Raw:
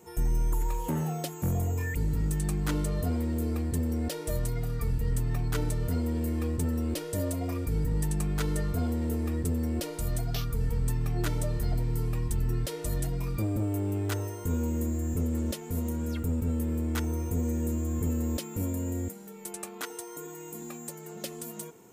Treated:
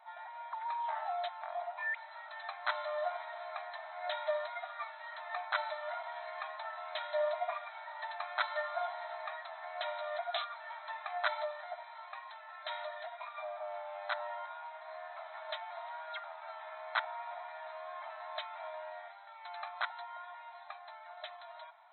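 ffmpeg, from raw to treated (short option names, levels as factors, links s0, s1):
-filter_complex "[0:a]asettb=1/sr,asplit=3[s0][s1][s2];[s0]atrim=end=11.444[s3];[s1]atrim=start=11.44:end=14.88,asetpts=PTS-STARTPTS,afade=t=in:d=0.004:c=qsin,afade=t=out:st=3.436:d=0.004:c=qsin,acompressor=threshold=0.0282:ratio=2:attack=3.2:release=140:knee=1:detection=peak[s4];[s2]atrim=start=14.876[s5];[s3][s4]acrossfade=d=0.004:c1=hsin:c2=qsin[s6];[s6][s5]acrossfade=d=0.004:c1=qsin:c2=hsin,dynaudnorm=f=170:g=31:m=1.5,afftfilt=real='re*between(b*sr/4096,600,4100)':imag='im*between(b*sr/4096,600,4100)':win_size=4096:overlap=0.75,equalizer=f=2800:w=3.9:g=-14,volume=1.58"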